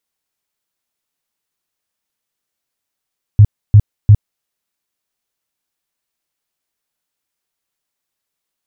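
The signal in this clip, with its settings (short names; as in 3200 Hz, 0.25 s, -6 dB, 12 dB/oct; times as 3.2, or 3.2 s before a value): tone bursts 104 Hz, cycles 6, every 0.35 s, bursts 3, -1.5 dBFS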